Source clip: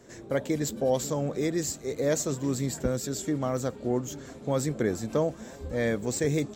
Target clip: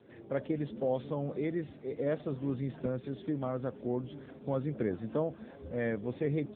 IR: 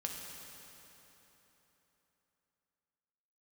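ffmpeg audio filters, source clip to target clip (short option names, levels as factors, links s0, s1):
-af "volume=0.562" -ar 8000 -c:a libopencore_amrnb -b:a 7950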